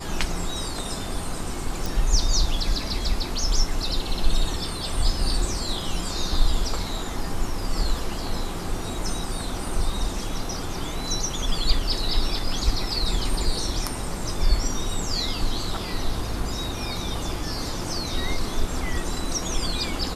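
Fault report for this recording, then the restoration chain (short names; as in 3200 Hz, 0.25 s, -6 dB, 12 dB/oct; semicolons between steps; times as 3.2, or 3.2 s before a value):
1.86 pop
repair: de-click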